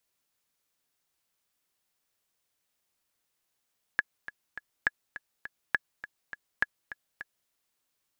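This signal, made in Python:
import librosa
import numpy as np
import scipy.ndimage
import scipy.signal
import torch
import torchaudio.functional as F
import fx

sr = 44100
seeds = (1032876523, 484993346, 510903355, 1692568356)

y = fx.click_track(sr, bpm=205, beats=3, bars=4, hz=1690.0, accent_db=15.0, level_db=-10.5)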